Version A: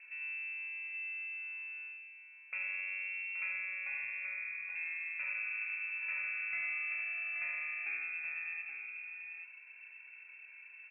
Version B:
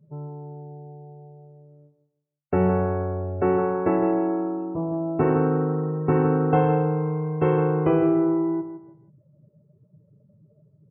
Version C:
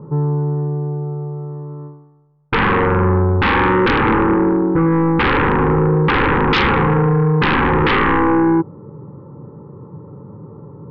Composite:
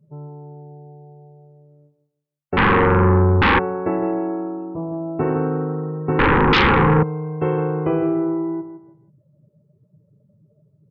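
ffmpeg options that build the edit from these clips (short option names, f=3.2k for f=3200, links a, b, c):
-filter_complex "[2:a]asplit=2[a][b];[1:a]asplit=3[c][d][e];[c]atrim=end=2.572[f];[a]atrim=start=2.568:end=3.592[g];[d]atrim=start=3.588:end=6.192[h];[b]atrim=start=6.188:end=7.032[i];[e]atrim=start=7.028[j];[f][g]acrossfade=d=0.004:c1=hsin:c2=hsin[k];[k][h]acrossfade=d=0.004:c1=hsin:c2=hsin[l];[l][i]acrossfade=d=0.004:c1=hsin:c2=hsin[m];[m][j]acrossfade=d=0.004:c1=hsin:c2=hsin"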